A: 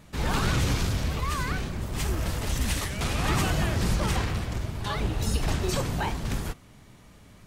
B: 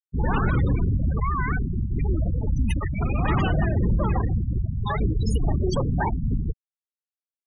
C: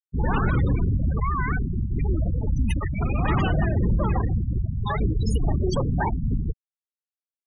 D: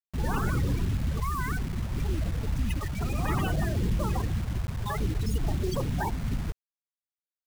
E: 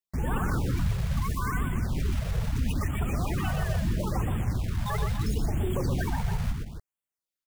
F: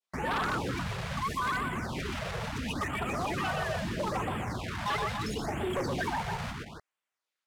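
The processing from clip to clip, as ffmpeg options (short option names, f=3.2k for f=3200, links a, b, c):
-filter_complex "[0:a]afftfilt=real='re*gte(hypot(re,im),0.0708)':imag='im*gte(hypot(re,im),0.0708)':win_size=1024:overlap=0.75,asplit=2[a][b];[b]alimiter=level_in=0.5dB:limit=-24dB:level=0:latency=1:release=54,volume=-0.5dB,volume=2dB[c];[a][c]amix=inputs=2:normalize=0"
-af anull
-af "acrusher=bits=5:mix=0:aa=0.000001,volume=-5.5dB"
-filter_complex "[0:a]alimiter=limit=-24dB:level=0:latency=1:release=17,asplit=2[a][b];[b]aecho=0:1:122.4|277:0.562|0.316[c];[a][c]amix=inputs=2:normalize=0,afftfilt=real='re*(1-between(b*sr/1024,250*pow(5200/250,0.5+0.5*sin(2*PI*0.75*pts/sr))/1.41,250*pow(5200/250,0.5+0.5*sin(2*PI*0.75*pts/sr))*1.41))':imag='im*(1-between(b*sr/1024,250*pow(5200/250,0.5+0.5*sin(2*PI*0.75*pts/sr))/1.41,250*pow(5200/250,0.5+0.5*sin(2*PI*0.75*pts/sr))*1.41))':win_size=1024:overlap=0.75,volume=2dB"
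-af "bandpass=f=1.5k:t=q:w=0.59:csg=0,adynamicequalizer=threshold=0.00355:dfrequency=1700:dqfactor=0.76:tfrequency=1700:tqfactor=0.76:attack=5:release=100:ratio=0.375:range=2.5:mode=cutabove:tftype=bell,aeval=exprs='0.075*sin(PI/2*3.16*val(0)/0.075)':c=same,volume=-4dB"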